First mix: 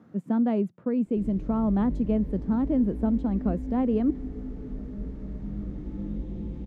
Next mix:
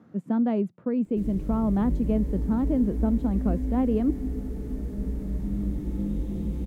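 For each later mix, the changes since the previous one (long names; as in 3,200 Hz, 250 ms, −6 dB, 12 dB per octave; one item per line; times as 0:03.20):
background: remove high-frequency loss of the air 150 metres
reverb: on, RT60 1.3 s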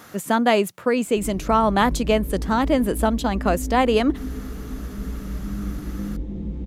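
speech: remove resonant band-pass 200 Hz, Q 1.6
background: add high-frequency loss of the air 130 metres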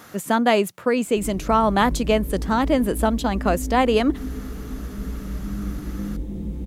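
background: remove high-frequency loss of the air 130 metres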